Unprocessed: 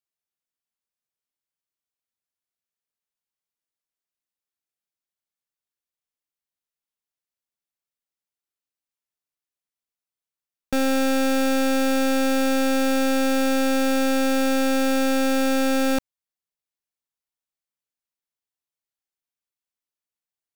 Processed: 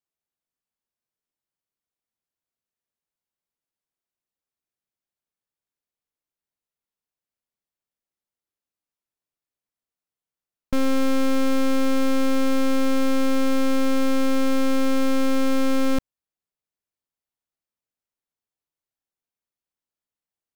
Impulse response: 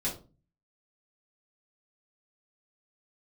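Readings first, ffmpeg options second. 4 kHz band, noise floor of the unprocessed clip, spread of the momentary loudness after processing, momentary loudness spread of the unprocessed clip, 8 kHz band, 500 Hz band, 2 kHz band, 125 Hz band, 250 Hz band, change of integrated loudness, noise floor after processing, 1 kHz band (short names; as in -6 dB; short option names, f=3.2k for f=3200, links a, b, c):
-4.0 dB, under -85 dBFS, 1 LU, 1 LU, -6.0 dB, -2.5 dB, -5.5 dB, n/a, -0.5 dB, -1.5 dB, under -85 dBFS, -3.5 dB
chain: -af "tiltshelf=f=1.2k:g=4,aeval=exprs='clip(val(0),-1,0.015)':c=same"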